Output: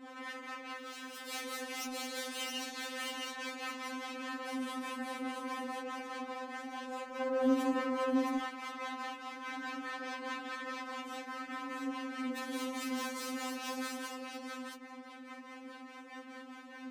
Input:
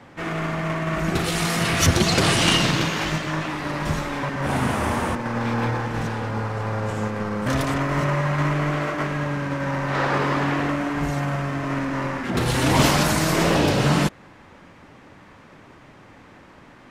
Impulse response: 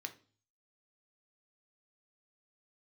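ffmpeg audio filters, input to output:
-filter_complex "[0:a]bandreject=frequency=50:width_type=h:width=6,bandreject=frequency=100:width_type=h:width=6,bandreject=frequency=150:width_type=h:width=6,acompressor=threshold=-30dB:ratio=4,acrossover=split=430[link_01][link_02];[link_01]aeval=exprs='val(0)*(1-0.7/2+0.7/2*cos(2*PI*4.8*n/s))':channel_layout=same[link_03];[link_02]aeval=exprs='val(0)*(1-0.7/2-0.7/2*cos(2*PI*4.8*n/s))':channel_layout=same[link_04];[link_03][link_04]amix=inputs=2:normalize=0,aeval=exprs='0.1*(cos(1*acos(clip(val(0)/0.1,-1,1)))-cos(1*PI/2))+0.00501*(cos(5*acos(clip(val(0)/0.1,-1,1)))-cos(5*PI/2))+0.02*(cos(8*acos(clip(val(0)/0.1,-1,1)))-cos(8*PI/2))':channel_layout=same,alimiter=level_in=4dB:limit=-24dB:level=0:latency=1:release=278,volume=-4dB,asplit=2[link_05][link_06];[link_06]aecho=0:1:668:0.708[link_07];[link_05][link_07]amix=inputs=2:normalize=0,asplit=3[link_08][link_09][link_10];[link_08]afade=type=out:start_time=0.77:duration=0.02[link_11];[link_09]aeval=exprs='0.0133*(abs(mod(val(0)/0.0133+3,4)-2)-1)':channel_layout=same,afade=type=in:start_time=0.77:duration=0.02,afade=type=out:start_time=1.27:duration=0.02[link_12];[link_10]afade=type=in:start_time=1.27:duration=0.02[link_13];[link_11][link_12][link_13]amix=inputs=3:normalize=0,highpass=100,asettb=1/sr,asplit=3[link_14][link_15][link_16];[link_14]atrim=end=7.204[link_17];[link_15]atrim=start=7.2:end=8.38,asetpts=PTS-STARTPTS,afade=type=in:duration=0.004:curve=qsin,afade=type=out:start_time=1.176:duration=0.004:curve=qsin,equalizer=frequency=340:width_type=o:width=2.6:gain=11[link_18];[link_16]atrim=start=8.376[link_19];[link_17][link_18]acrossfade=duration=0.004:curve1=hsin:curve2=qsin[link_20];[link_20][link_19]acrossfade=duration=0.004:curve1=qsin:curve2=hsin,afftfilt=real='re*3.46*eq(mod(b,12),0)':imag='im*3.46*eq(mod(b,12),0)':win_size=2048:overlap=0.75"

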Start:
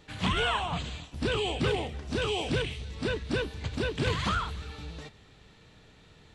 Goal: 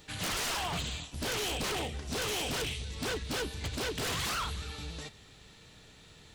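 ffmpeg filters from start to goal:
ffmpeg -i in.wav -af "crystalizer=i=2.5:c=0,aeval=exprs='0.0422*(abs(mod(val(0)/0.0422+3,4)-2)-1)':channel_layout=same,volume=-1dB" out.wav

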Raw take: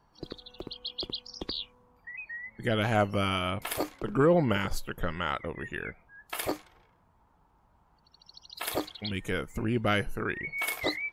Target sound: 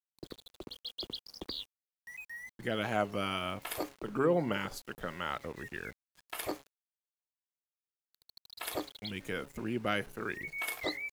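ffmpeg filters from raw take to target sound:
ffmpeg -i in.wav -filter_complex "[0:a]bandreject=frequency=138.6:width_type=h:width=4,bandreject=frequency=277.2:width_type=h:width=4,bandreject=frequency=415.8:width_type=h:width=4,bandreject=frequency=554.4:width_type=h:width=4,bandreject=frequency=693:width_type=h:width=4,bandreject=frequency=831.6:width_type=h:width=4,acrossover=split=150|6700[link_01][link_02][link_03];[link_01]acompressor=threshold=-45dB:ratio=8[link_04];[link_04][link_02][link_03]amix=inputs=3:normalize=0,aeval=exprs='val(0)*gte(abs(val(0)),0.00501)':channel_layout=same,volume=-5dB" out.wav

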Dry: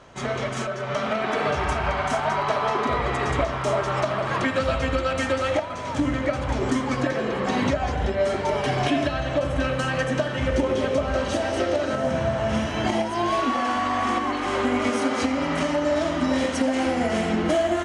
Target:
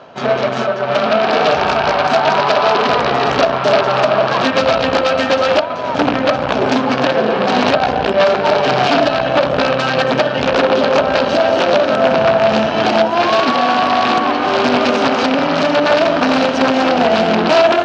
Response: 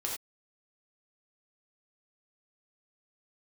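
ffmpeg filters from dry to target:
-af "areverse,acompressor=mode=upward:threshold=-33dB:ratio=2.5,areverse,aeval=exprs='0.316*(cos(1*acos(clip(val(0)/0.316,-1,1)))-cos(1*PI/2))+0.0891*(cos(2*acos(clip(val(0)/0.316,-1,1)))-cos(2*PI/2))+0.0891*(cos(3*acos(clip(val(0)/0.316,-1,1)))-cos(3*PI/2))':channel_layout=same,aeval=exprs='0.299*sin(PI/2*6.31*val(0)/0.299)':channel_layout=same,highpass=200,equalizer=frequency=330:width_type=q:width=4:gain=-5,equalizer=frequency=680:width_type=q:width=4:gain=4,equalizer=frequency=1100:width_type=q:width=4:gain=-3,equalizer=frequency=2000:width_type=q:width=4:gain=-9,equalizer=frequency=3400:width_type=q:width=4:gain=-4,lowpass=frequency=4400:width=0.5412,lowpass=frequency=4400:width=1.3066,volume=6.5dB"

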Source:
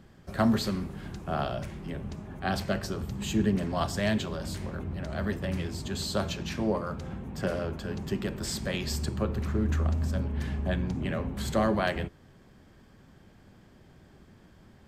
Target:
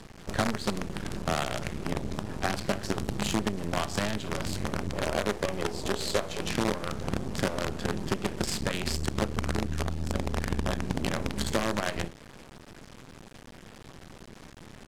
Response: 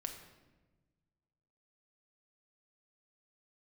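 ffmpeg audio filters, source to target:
-filter_complex "[0:a]asettb=1/sr,asplit=3[link_01][link_02][link_03];[link_01]atrim=end=4.924[link_04];[link_02]atrim=start=4.92:end=6.51,asetpts=PTS-STARTPTS,afade=type=in:duration=0.004:curve=qsin,afade=type=out:start_time=1.586:duration=0.004:curve=qsin,equalizer=frequency=125:width_type=o:width=1:gain=-7,equalizer=frequency=250:width_type=o:width=1:gain=-3,equalizer=frequency=500:width_type=o:width=1:gain=11[link_05];[link_03]atrim=start=6.506[link_06];[link_04][link_05]acrossfade=duration=0.004:curve1=hsin:curve2=qsin[link_07];[link_07][link_06]acrossfade=duration=0.004:curve1=qsin:curve2=hsin,volume=18dB,asoftclip=hard,volume=-18dB,equalizer=frequency=300:width=0.93:gain=2.5,aecho=1:1:29|53:0.2|0.133,acompressor=threshold=-33dB:ratio=10,acrusher=bits=6:dc=4:mix=0:aa=0.000001,lowpass=9800,volume=8dB"

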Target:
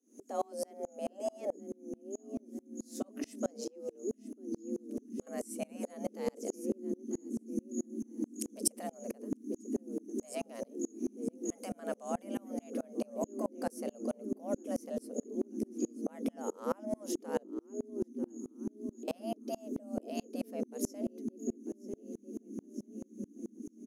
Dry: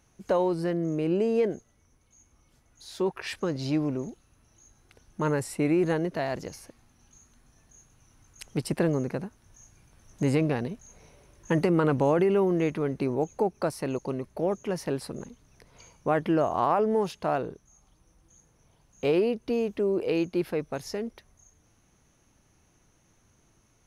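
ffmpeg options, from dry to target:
ffmpeg -i in.wav -filter_complex "[0:a]asettb=1/sr,asplit=3[link_01][link_02][link_03];[link_01]atrim=end=17.434[link_04];[link_02]atrim=start=17.43:end=19.08,asetpts=PTS-STARTPTS,afade=type=in:duration=0.004:curve=qsin,afade=type=out:start_time=1.646:duration=0.004:curve=qsin,acompressor=threshold=-52dB:ratio=12[link_05];[link_03]atrim=start=19.076[link_06];[link_04][link_05]acrossfade=duration=0.004:curve1=hsin:curve2=qsin[link_07];[link_07][link_06]acrossfade=duration=0.004:curve1=qsin:curve2=hsin,asubboost=boost=10:cutoff=140,aecho=1:1:944|1888|2832:0.0841|0.0387|0.0178,asettb=1/sr,asplit=3[link_08][link_09][link_10];[link_08]atrim=end=3.644[link_11];[link_09]atrim=start=3.64:end=5.27,asetpts=PTS-STARTPTS,afade=type=in:duration=0.004:curve=qsin,afade=type=out:start_time=1.626:duration=0.004:curve=qsin,acrossover=split=840|2000[link_12][link_13][link_14];[link_12]acompressor=threshold=-38dB:ratio=4[link_15];[link_13]acompressor=threshold=-60dB:ratio=4[link_16];[link_14]acompressor=threshold=-55dB:ratio=4[link_17];[link_15][link_16][link_17]amix=inputs=3:normalize=0[link_18];[link_10]atrim=start=5.266[link_19];[link_11][link_18]acrossfade=duration=0.004:curve1=hsin:curve2=qsin[link_20];[link_20][link_19]acrossfade=duration=0.004:curve1=qsin:curve2=hsin,firequalizer=gain_entry='entry(190,0);entry(670,-23);entry(3900,-18);entry(6100,-1)':delay=0.05:min_phase=1,afftfilt=real='re*lt(hypot(re,im),0.126)':imag='im*lt(hypot(re,im),0.126)':win_size=1024:overlap=0.75,afreqshift=200,aeval=exprs='val(0)*pow(10,-32*if(lt(mod(-4.6*n/s,1),2*abs(-4.6)/1000),1-mod(-4.6*n/s,1)/(2*abs(-4.6)/1000),(mod(-4.6*n/s,1)-2*abs(-4.6)/1000)/(1-2*abs(-4.6)/1000))/20)':channel_layout=same,volume=13dB" out.wav

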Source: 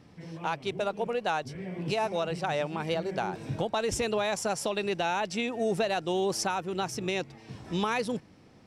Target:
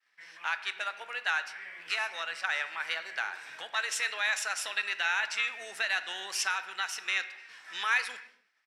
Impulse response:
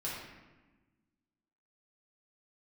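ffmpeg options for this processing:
-filter_complex "[0:a]agate=range=-33dB:threshold=-46dB:ratio=3:detection=peak,asplit=2[link_01][link_02];[link_02]asetrate=22050,aresample=44100,atempo=2,volume=-11dB[link_03];[link_01][link_03]amix=inputs=2:normalize=0,highpass=frequency=1700:width_type=q:width=3,asplit=2[link_04][link_05];[1:a]atrim=start_sample=2205,afade=type=out:start_time=0.36:duration=0.01,atrim=end_sample=16317[link_06];[link_05][link_06]afir=irnorm=-1:irlink=0,volume=-10.5dB[link_07];[link_04][link_07]amix=inputs=2:normalize=0,volume=-1.5dB"

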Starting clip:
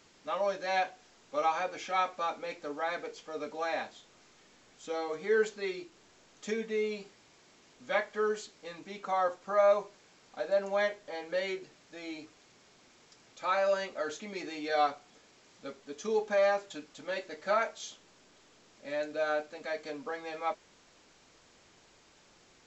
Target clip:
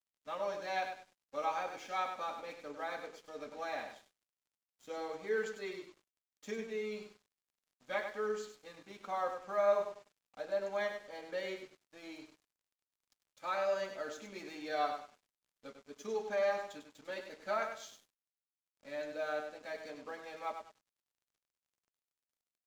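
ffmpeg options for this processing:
ffmpeg -i in.wav -af "aecho=1:1:99|198|297|396:0.447|0.134|0.0402|0.0121,aeval=exprs='sgn(val(0))*max(abs(val(0))-0.00224,0)':channel_layout=same,volume=-6.5dB" out.wav

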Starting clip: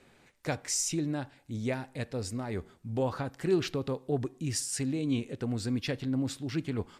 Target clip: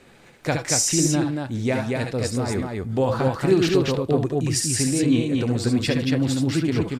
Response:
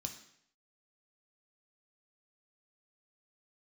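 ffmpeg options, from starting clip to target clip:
-af "aecho=1:1:67|73|79|232:0.422|0.335|0.15|0.708,volume=8.5dB"

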